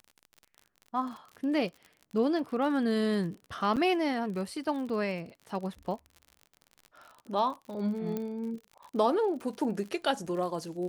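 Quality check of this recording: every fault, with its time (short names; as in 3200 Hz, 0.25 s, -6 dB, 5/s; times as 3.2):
crackle 47/s -39 dBFS
3.76–3.77 gap 7.5 ms
8.17 pop -21 dBFS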